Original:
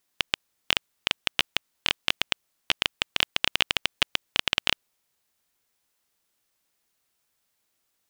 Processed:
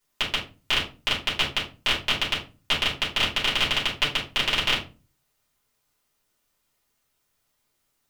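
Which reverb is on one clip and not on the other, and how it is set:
rectangular room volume 150 cubic metres, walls furnished, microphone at 4.8 metres
level −7 dB

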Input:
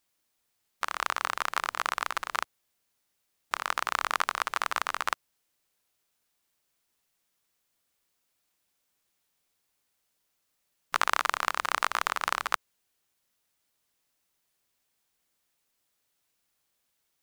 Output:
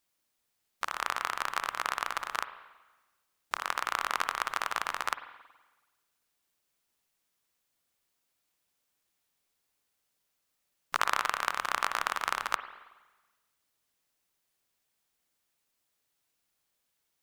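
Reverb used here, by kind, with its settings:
spring reverb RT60 1.2 s, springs 46/53 ms, chirp 65 ms, DRR 11 dB
level −2.5 dB

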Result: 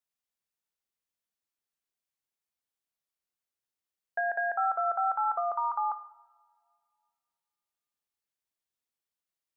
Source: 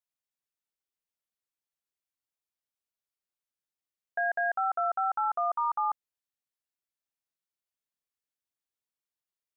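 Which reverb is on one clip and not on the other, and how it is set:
coupled-rooms reverb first 0.81 s, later 2.4 s, from −20 dB, DRR 10 dB

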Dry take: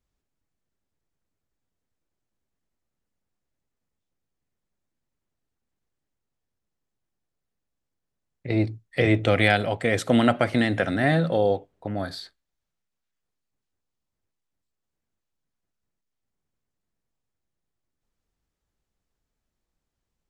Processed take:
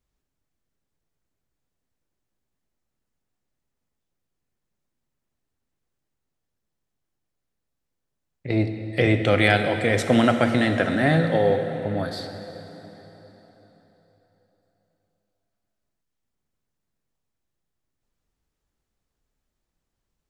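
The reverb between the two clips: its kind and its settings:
dense smooth reverb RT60 4.1 s, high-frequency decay 0.85×, DRR 6.5 dB
level +1 dB

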